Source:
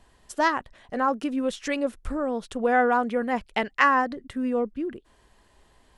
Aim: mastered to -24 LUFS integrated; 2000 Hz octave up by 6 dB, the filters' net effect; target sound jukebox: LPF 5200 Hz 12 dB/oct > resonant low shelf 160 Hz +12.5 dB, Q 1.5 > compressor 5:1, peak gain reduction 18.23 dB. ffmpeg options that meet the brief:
-af "lowpass=5.2k,lowshelf=f=160:t=q:w=1.5:g=12.5,equalizer=f=2k:t=o:g=7.5,acompressor=threshold=-31dB:ratio=5,volume=11dB"

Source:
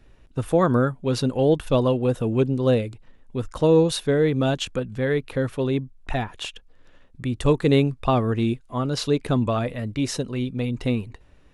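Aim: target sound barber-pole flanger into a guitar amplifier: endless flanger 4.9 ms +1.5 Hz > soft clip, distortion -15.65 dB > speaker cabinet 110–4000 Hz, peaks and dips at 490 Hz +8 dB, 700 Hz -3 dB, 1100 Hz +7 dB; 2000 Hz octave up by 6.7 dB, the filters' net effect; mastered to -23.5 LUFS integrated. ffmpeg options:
-filter_complex "[0:a]equalizer=f=2k:t=o:g=8,asplit=2[a][b];[b]adelay=4.9,afreqshift=1.5[c];[a][c]amix=inputs=2:normalize=1,asoftclip=threshold=-14.5dB,highpass=110,equalizer=f=490:t=q:w=4:g=8,equalizer=f=700:t=q:w=4:g=-3,equalizer=f=1.1k:t=q:w=4:g=7,lowpass=f=4k:w=0.5412,lowpass=f=4k:w=1.3066"

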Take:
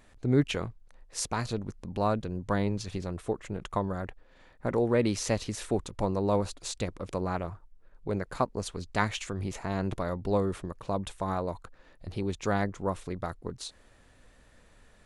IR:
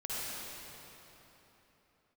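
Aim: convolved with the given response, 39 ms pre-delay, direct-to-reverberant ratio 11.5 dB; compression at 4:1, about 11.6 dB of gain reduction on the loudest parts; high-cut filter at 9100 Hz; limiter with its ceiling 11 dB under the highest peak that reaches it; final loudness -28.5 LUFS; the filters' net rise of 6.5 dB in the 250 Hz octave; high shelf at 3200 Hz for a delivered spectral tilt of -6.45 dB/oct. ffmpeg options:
-filter_complex "[0:a]lowpass=9.1k,equalizer=f=250:t=o:g=8.5,highshelf=f=3.2k:g=-5.5,acompressor=threshold=-27dB:ratio=4,alimiter=level_in=2.5dB:limit=-24dB:level=0:latency=1,volume=-2.5dB,asplit=2[a][b];[1:a]atrim=start_sample=2205,adelay=39[c];[b][c]afir=irnorm=-1:irlink=0,volume=-16dB[d];[a][d]amix=inputs=2:normalize=0,volume=9dB"

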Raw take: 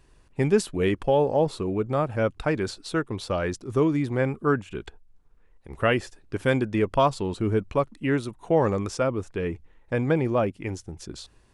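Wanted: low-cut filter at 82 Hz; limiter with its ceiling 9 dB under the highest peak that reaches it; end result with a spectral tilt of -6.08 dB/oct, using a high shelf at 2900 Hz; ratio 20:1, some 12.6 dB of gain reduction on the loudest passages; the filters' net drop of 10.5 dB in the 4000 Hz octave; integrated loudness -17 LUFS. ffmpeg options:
-af "highpass=82,highshelf=f=2.9k:g=-7.5,equalizer=f=4k:t=o:g=-8.5,acompressor=threshold=-28dB:ratio=20,volume=19.5dB,alimiter=limit=-5.5dB:level=0:latency=1"

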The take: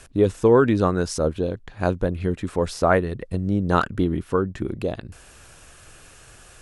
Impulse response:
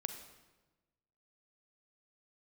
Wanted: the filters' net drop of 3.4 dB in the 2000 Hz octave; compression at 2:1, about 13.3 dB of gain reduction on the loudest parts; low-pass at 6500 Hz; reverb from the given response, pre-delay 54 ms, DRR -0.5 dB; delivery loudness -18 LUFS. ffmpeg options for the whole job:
-filter_complex "[0:a]lowpass=6.5k,equalizer=f=2k:t=o:g=-5,acompressor=threshold=-37dB:ratio=2,asplit=2[a][b];[1:a]atrim=start_sample=2205,adelay=54[c];[b][c]afir=irnorm=-1:irlink=0,volume=1dB[d];[a][d]amix=inputs=2:normalize=0,volume=13dB"

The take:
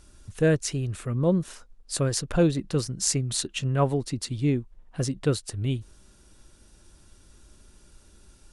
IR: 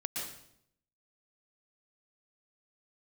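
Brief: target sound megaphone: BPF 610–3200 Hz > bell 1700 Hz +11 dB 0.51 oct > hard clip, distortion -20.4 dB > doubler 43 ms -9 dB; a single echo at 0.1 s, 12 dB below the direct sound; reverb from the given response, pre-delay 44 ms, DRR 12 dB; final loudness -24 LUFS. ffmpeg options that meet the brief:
-filter_complex "[0:a]aecho=1:1:100:0.251,asplit=2[a][b];[1:a]atrim=start_sample=2205,adelay=44[c];[b][c]afir=irnorm=-1:irlink=0,volume=-14.5dB[d];[a][d]amix=inputs=2:normalize=0,highpass=610,lowpass=3.2k,equalizer=f=1.7k:t=o:w=0.51:g=11,asoftclip=type=hard:threshold=-16.5dB,asplit=2[e][f];[f]adelay=43,volume=-9dB[g];[e][g]amix=inputs=2:normalize=0,volume=9dB"

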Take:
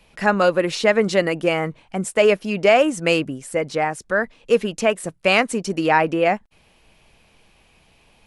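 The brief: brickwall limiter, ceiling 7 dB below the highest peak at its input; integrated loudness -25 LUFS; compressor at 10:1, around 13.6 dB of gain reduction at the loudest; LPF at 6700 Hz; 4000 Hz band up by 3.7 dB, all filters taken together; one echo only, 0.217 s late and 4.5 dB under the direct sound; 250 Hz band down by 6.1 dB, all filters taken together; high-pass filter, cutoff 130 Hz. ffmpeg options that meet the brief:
-af "highpass=130,lowpass=6.7k,equalizer=f=250:t=o:g=-8.5,equalizer=f=4k:t=o:g=6,acompressor=threshold=-25dB:ratio=10,alimiter=limit=-20.5dB:level=0:latency=1,aecho=1:1:217:0.596,volume=5.5dB"

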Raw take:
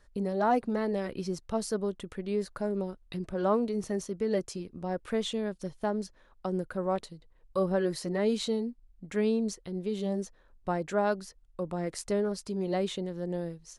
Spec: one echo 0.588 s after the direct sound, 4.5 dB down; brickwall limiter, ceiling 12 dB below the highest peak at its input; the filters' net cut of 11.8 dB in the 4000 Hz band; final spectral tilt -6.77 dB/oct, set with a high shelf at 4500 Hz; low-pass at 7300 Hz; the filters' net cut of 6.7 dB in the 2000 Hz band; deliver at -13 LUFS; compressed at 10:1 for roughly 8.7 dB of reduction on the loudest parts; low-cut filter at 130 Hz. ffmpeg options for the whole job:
-af "highpass=130,lowpass=7.3k,equalizer=f=2k:t=o:g=-6.5,equalizer=f=4k:t=o:g=-7.5,highshelf=f=4.5k:g=-9,acompressor=threshold=-31dB:ratio=10,alimiter=level_in=9.5dB:limit=-24dB:level=0:latency=1,volume=-9.5dB,aecho=1:1:588:0.596,volume=28.5dB"

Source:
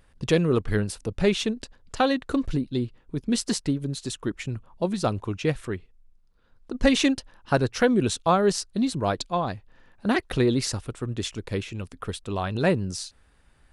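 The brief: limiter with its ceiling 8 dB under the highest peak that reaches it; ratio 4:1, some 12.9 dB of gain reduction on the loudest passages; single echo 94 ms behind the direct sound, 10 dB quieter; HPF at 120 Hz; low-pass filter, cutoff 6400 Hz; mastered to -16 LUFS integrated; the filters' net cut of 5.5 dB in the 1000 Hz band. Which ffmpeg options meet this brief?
-af "highpass=120,lowpass=6.4k,equalizer=f=1k:t=o:g=-8,acompressor=threshold=-33dB:ratio=4,alimiter=level_in=3dB:limit=-24dB:level=0:latency=1,volume=-3dB,aecho=1:1:94:0.316,volume=22.5dB"

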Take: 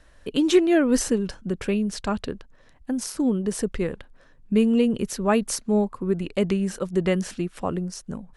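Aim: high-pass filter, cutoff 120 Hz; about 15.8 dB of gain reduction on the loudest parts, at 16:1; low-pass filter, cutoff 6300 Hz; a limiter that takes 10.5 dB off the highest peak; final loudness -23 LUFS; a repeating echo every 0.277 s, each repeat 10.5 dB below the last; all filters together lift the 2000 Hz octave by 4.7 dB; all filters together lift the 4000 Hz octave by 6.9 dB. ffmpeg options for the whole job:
-af "highpass=120,lowpass=6.3k,equalizer=f=2k:t=o:g=3.5,equalizer=f=4k:t=o:g=9,acompressor=threshold=-27dB:ratio=16,alimiter=limit=-24dB:level=0:latency=1,aecho=1:1:277|554|831:0.299|0.0896|0.0269,volume=11dB"

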